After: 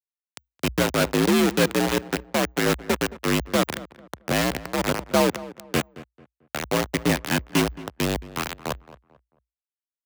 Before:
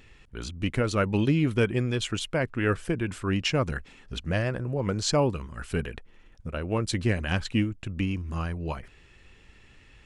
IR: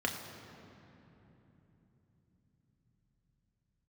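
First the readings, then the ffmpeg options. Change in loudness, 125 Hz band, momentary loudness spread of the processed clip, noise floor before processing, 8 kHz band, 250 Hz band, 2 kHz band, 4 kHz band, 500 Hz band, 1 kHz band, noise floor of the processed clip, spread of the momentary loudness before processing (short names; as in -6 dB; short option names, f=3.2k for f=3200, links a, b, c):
+4.0 dB, -2.5 dB, 13 LU, -56 dBFS, +7.5 dB, +4.0 dB, +5.5 dB, +5.5 dB, +4.5 dB, +7.5 dB, under -85 dBFS, 13 LU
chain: -filter_complex "[0:a]acrossover=split=130|870[a][b][c];[c]volume=28.5dB,asoftclip=hard,volume=-28.5dB[d];[a][b][d]amix=inputs=3:normalize=0,acrusher=bits=3:mix=0:aa=0.000001,afreqshift=57,asplit=2[e][f];[f]adelay=221,lowpass=f=1.9k:p=1,volume=-17dB,asplit=2[g][h];[h]adelay=221,lowpass=f=1.9k:p=1,volume=0.32,asplit=2[i][j];[j]adelay=221,lowpass=f=1.9k:p=1,volume=0.32[k];[e][g][i][k]amix=inputs=4:normalize=0,volume=3dB"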